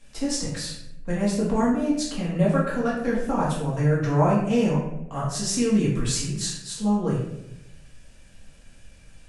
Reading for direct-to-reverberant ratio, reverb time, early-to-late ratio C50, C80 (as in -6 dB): -7.5 dB, 0.85 s, 2.5 dB, 5.5 dB